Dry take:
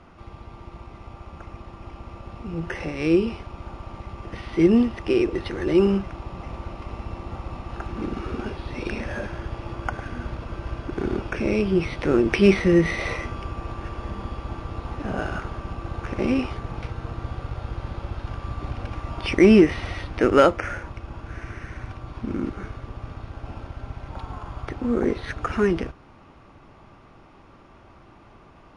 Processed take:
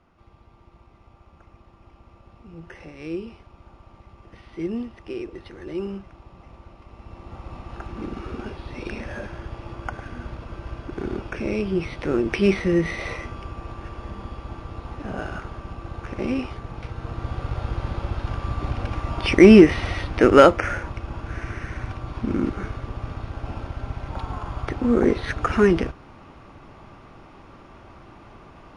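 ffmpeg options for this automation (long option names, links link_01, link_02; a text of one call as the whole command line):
ffmpeg -i in.wav -af "volume=4dB,afade=type=in:start_time=6.92:duration=0.66:silence=0.375837,afade=type=in:start_time=16.79:duration=0.79:silence=0.446684" out.wav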